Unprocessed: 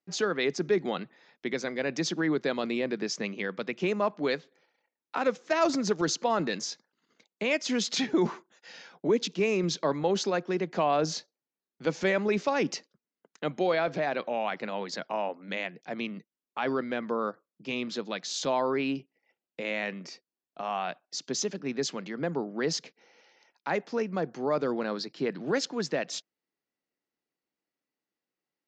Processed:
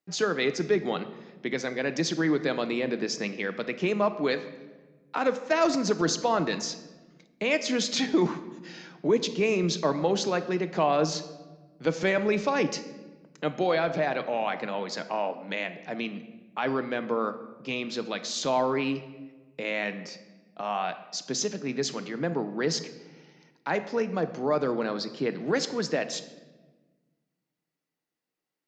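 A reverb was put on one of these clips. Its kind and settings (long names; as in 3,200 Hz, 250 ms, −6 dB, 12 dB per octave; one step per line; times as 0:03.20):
rectangular room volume 900 cubic metres, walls mixed, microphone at 0.51 metres
level +1.5 dB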